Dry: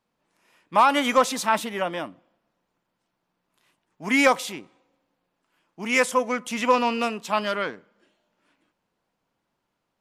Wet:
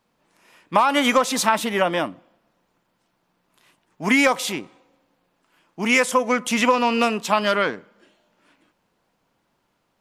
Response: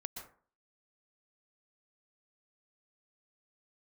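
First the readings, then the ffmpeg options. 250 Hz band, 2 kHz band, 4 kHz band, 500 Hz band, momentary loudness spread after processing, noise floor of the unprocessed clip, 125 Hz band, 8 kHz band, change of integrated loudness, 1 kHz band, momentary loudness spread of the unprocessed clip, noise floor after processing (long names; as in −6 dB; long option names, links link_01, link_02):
+4.5 dB, +3.5 dB, +5.0 dB, +3.0 dB, 11 LU, −79 dBFS, +7.0 dB, +5.0 dB, +2.5 dB, +1.5 dB, 15 LU, −71 dBFS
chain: -af "acompressor=threshold=-22dB:ratio=6,volume=8dB"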